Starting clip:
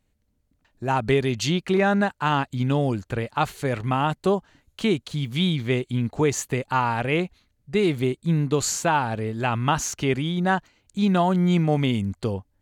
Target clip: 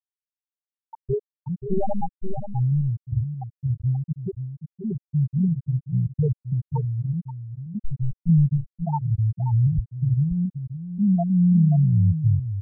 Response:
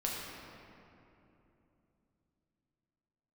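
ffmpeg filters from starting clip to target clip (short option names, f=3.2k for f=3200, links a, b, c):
-filter_complex "[0:a]asettb=1/sr,asplit=3[a][b][c];[a]atrim=end=7.844[d];[b]atrim=start=7.84:end=8.29,asetpts=PTS-STARTPTS,afade=t=in:d=0.004:c=qsin,afade=t=out:st=0.446:d=0.004:c=qsin,aeval=exprs='(tanh(11.2*val(0)+0.35)-tanh(0.35))/11.2':c=same[e];[c]atrim=start=8.286[f];[d][e]acrossfade=d=0.004:c1=hsin:c2=qsin[g];[g][f]acrossfade=d=0.004:c1=qsin:c2=hsin,asubboost=boost=9.5:cutoff=94,acrossover=split=6000[h][i];[h]acrusher=bits=5:mix=0:aa=0.000001[j];[j][i]amix=inputs=2:normalize=0,asplit=3[k][l][m];[k]afade=t=out:st=1.57:d=0.02[n];[l]aeval=exprs='0.266*(cos(1*acos(clip(val(0)/0.266,-1,1)))-cos(1*PI/2))+0.119*(cos(4*acos(clip(val(0)/0.266,-1,1)))-cos(4*PI/2))+0.00376*(cos(5*acos(clip(val(0)/0.266,-1,1)))-cos(5*PI/2))+0.0237*(cos(8*acos(clip(val(0)/0.266,-1,1)))-cos(8*PI/2))':c=same,afade=t=in:st=1.57:d=0.02,afade=t=out:st=2.34:d=0.02[o];[m]afade=t=in:st=2.34:d=0.02[p];[n][o][p]amix=inputs=3:normalize=0,asettb=1/sr,asplit=3[q][r][s];[q]atrim=end=5.534[t];[r]atrim=start=5.53:end=6.1,asetpts=PTS-STARTPTS,afade=t=in:d=0.004:c=qsin,afade=t=out:st=0.566:d=0.004:c=qsin,equalizer=f=180:w=0.78:g=-4.5[u];[s]atrim=start=6.096[v];[t][u]acrossfade=d=0.004:c1=hsin:c2=qsin[w];[w][v]acrossfade=d=0.004:c1=qsin:c2=hsin,afftfilt=real='re*gte(hypot(re,im),0.891)':imag='im*gte(hypot(re,im),0.891)':win_size=1024:overlap=0.75,asplit=2[x][y];[y]adelay=530.6,volume=-9dB,highshelf=f=4k:g=-11.9[z];[x][z]amix=inputs=2:normalize=0"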